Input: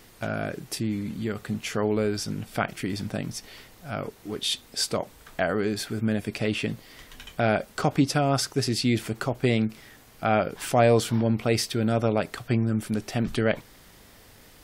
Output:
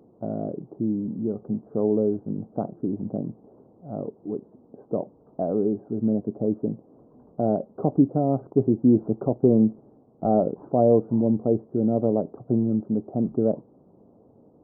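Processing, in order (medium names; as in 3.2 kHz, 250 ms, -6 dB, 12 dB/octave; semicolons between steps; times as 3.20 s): high-pass 200 Hz 12 dB/octave; 8.39–10.69 s: waveshaping leveller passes 1; Gaussian low-pass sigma 14 samples; trim +6.5 dB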